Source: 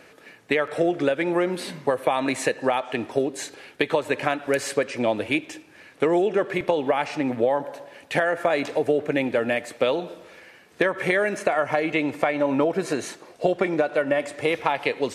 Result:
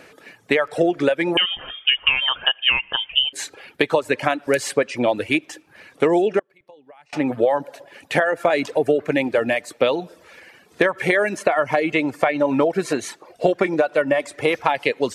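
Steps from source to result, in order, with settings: 6.39–7.13 s: inverted gate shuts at -23 dBFS, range -28 dB; reverb removal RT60 0.6 s; 1.37–3.33 s: frequency inversion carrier 3.4 kHz; trim +4 dB

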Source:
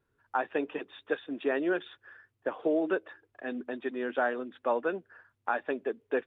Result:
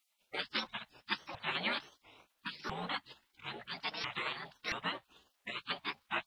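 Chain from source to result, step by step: sawtooth pitch modulation +8 st, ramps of 674 ms; spectral gate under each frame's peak -25 dB weak; trim +13.5 dB

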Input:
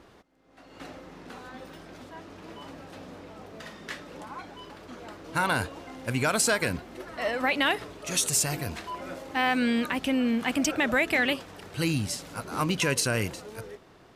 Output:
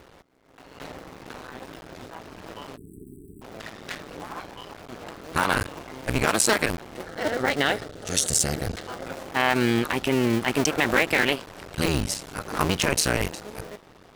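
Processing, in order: cycle switcher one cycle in 2, muted; 2.77–3.42 s: spectral selection erased 440–7700 Hz; 7.06–9.06 s: graphic EQ with 31 bands 100 Hz +7 dB, 500 Hz +4 dB, 1 kHz -9 dB, 2.5 kHz -8 dB, 12.5 kHz -7 dB; trim +6 dB

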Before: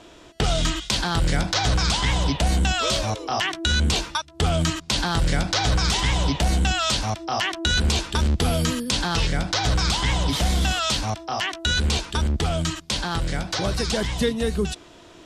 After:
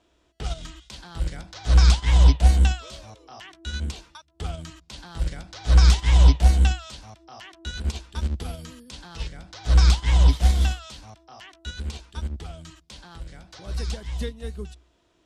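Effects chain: peaking EQ 61 Hz +13.5 dB 0.27 oct; upward expansion 2.5:1, over -21 dBFS

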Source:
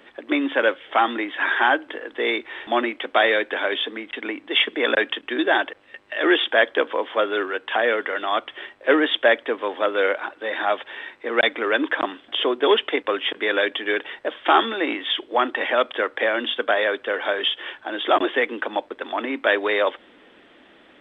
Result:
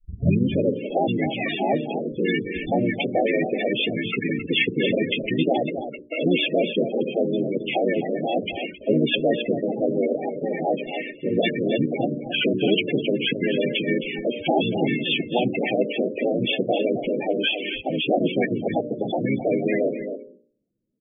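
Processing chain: tape start-up on the opening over 0.48 s; elliptic band-stop 780–2300 Hz, stop band 60 dB; gate -45 dBFS, range -44 dB; tone controls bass +15 dB, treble -5 dB; de-hum 74.32 Hz, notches 8; hard clipper -5 dBFS, distortion -31 dB; harmony voices -12 st -8 dB, -4 st -1 dB; loudest bins only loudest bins 16; on a send: delay 266 ms -17.5 dB; on the sum: spectrum-flattening compressor 2:1; trim -7.5 dB

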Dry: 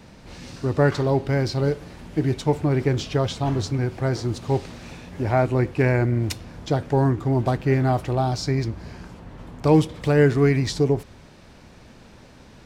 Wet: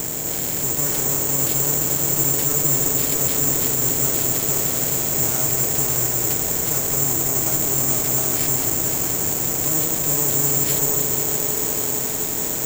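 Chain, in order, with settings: spectral levelling over time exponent 0.4; peaking EQ 1.2 kHz -5.5 dB 0.84 oct; valve stage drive 24 dB, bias 0.8; echo with a slow build-up 87 ms, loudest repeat 8, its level -13 dB; careless resampling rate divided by 6×, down none, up zero stuff; trim -3.5 dB

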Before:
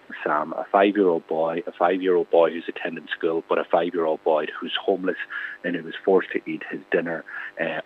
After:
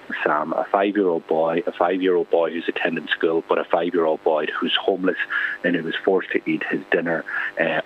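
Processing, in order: compression 6:1, threshold -24 dBFS, peak gain reduction 12 dB; trim +8.5 dB

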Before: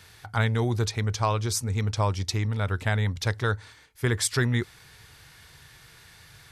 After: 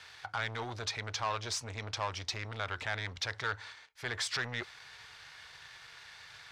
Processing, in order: peak limiter -19 dBFS, peak gain reduction 6.5 dB; waveshaping leveller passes 2; three-band isolator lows -16 dB, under 570 Hz, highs -22 dB, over 6.4 kHz; trim -4.5 dB

